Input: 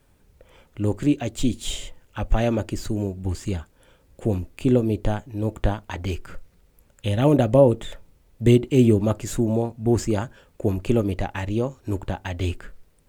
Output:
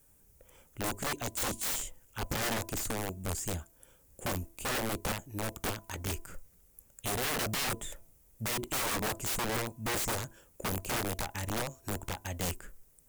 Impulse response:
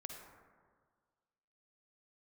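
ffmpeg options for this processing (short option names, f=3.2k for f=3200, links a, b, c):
-af "aexciter=amount=4.9:drive=5.7:freq=5.9k,aeval=exprs='(mod(8.91*val(0)+1,2)-1)/8.91':c=same,bandreject=f=333.5:t=h:w=4,bandreject=f=667:t=h:w=4,bandreject=f=1.0005k:t=h:w=4,volume=-8.5dB"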